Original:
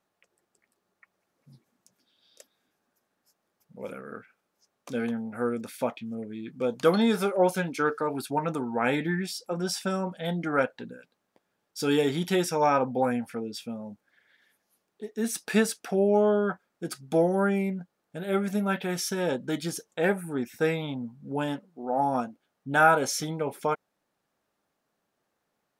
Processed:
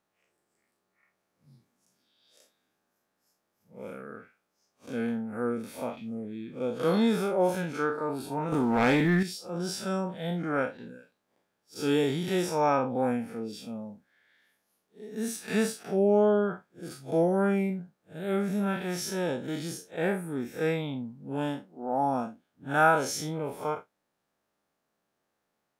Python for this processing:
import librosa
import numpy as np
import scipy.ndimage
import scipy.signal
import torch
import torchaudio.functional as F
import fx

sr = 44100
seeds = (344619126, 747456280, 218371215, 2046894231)

y = fx.spec_blur(x, sr, span_ms=103.0)
y = fx.leveller(y, sr, passes=2, at=(8.52, 9.23))